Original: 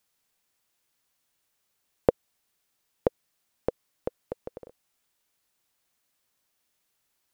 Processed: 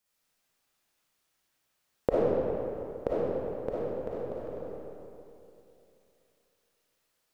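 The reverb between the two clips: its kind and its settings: digital reverb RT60 2.9 s, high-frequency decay 0.65×, pre-delay 15 ms, DRR -8.5 dB; gain -7 dB

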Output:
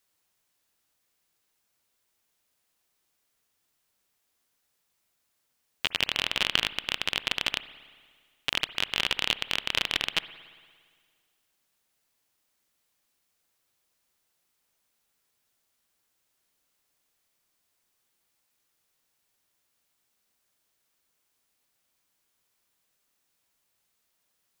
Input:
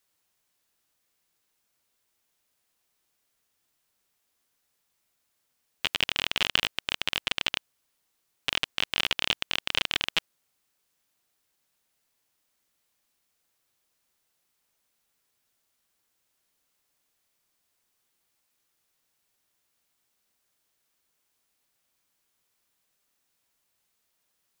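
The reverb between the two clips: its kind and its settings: spring tank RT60 1.8 s, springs 57 ms, chirp 40 ms, DRR 15 dB

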